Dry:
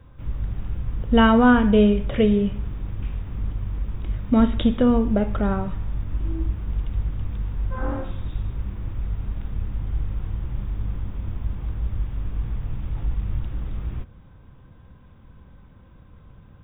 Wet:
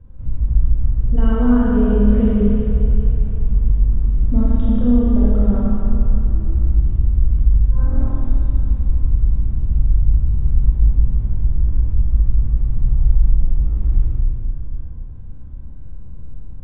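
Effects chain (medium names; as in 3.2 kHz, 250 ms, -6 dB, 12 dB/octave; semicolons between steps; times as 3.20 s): tilt EQ -4.5 dB/octave; peak limiter -2 dBFS, peak gain reduction 10 dB; Schroeder reverb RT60 3 s, combs from 29 ms, DRR -8 dB; trim -12 dB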